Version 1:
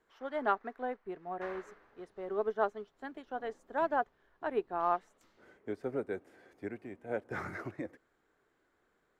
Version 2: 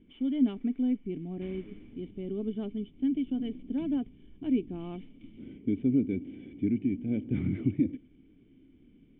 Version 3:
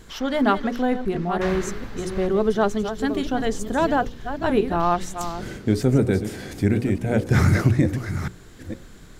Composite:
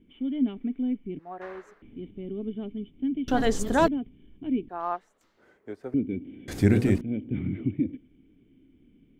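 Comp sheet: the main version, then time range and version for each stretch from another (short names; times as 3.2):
2
1.19–1.82 from 1
3.28–3.88 from 3
4.69–5.94 from 1
6.48–7.01 from 3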